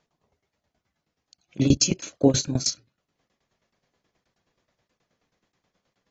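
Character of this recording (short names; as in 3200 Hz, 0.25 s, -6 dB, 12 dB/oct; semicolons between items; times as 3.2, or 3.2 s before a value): tremolo saw down 9.4 Hz, depth 95%; AAC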